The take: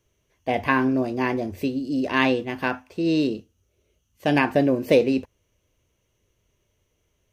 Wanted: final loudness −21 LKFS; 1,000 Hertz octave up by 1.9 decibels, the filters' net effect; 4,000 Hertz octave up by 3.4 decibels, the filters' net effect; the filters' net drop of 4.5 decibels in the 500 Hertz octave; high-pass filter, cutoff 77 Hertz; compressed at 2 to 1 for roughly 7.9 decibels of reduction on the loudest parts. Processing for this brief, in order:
high-pass filter 77 Hz
parametric band 500 Hz −6.5 dB
parametric band 1,000 Hz +4 dB
parametric band 4,000 Hz +4.5 dB
downward compressor 2 to 1, threshold −29 dBFS
level +9 dB

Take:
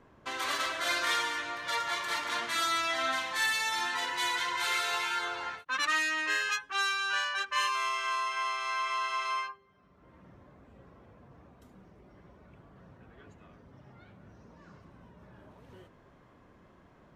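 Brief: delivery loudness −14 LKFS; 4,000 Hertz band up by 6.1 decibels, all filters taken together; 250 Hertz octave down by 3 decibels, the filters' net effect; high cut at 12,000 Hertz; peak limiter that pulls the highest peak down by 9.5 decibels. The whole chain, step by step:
low-pass filter 12,000 Hz
parametric band 250 Hz −4.5 dB
parametric band 4,000 Hz +7.5 dB
level +17 dB
brickwall limiter −6.5 dBFS

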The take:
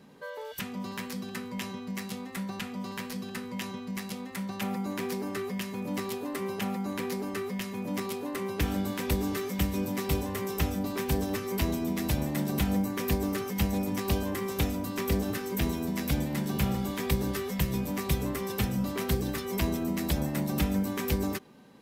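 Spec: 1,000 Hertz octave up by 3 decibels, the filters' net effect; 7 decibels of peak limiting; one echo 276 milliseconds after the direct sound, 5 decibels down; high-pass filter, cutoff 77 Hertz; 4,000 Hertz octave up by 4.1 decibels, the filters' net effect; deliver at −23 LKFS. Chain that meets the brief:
high-pass filter 77 Hz
parametric band 1,000 Hz +3.5 dB
parametric band 4,000 Hz +5 dB
brickwall limiter −20 dBFS
single-tap delay 276 ms −5 dB
level +8 dB

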